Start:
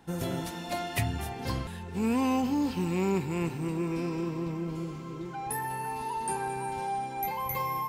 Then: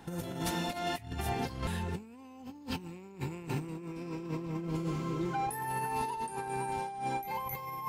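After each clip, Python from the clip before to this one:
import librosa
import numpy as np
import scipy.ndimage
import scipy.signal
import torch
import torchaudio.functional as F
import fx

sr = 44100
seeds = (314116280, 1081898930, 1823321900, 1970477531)

y = fx.over_compress(x, sr, threshold_db=-36.0, ratio=-0.5)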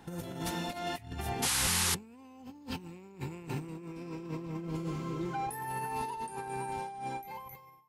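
y = fx.fade_out_tail(x, sr, length_s=0.97)
y = fx.spec_paint(y, sr, seeds[0], shape='noise', start_s=1.42, length_s=0.53, low_hz=730.0, high_hz=12000.0, level_db=-28.0)
y = y * 10.0 ** (-2.0 / 20.0)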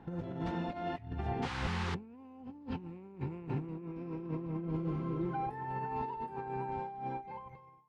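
y = fx.spacing_loss(x, sr, db_at_10k=41)
y = y * 10.0 ** (2.0 / 20.0)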